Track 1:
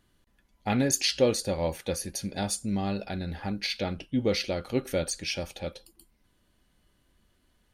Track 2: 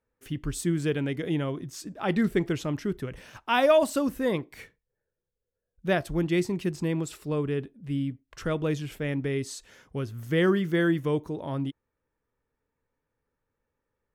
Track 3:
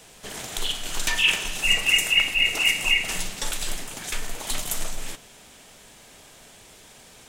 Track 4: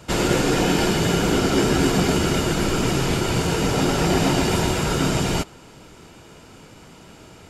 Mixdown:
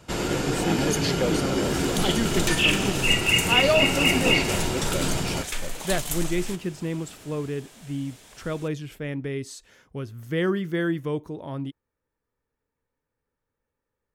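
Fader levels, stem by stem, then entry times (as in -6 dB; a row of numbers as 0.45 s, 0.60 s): -4.0 dB, -1.5 dB, -1.5 dB, -6.5 dB; 0.00 s, 0.00 s, 1.40 s, 0.00 s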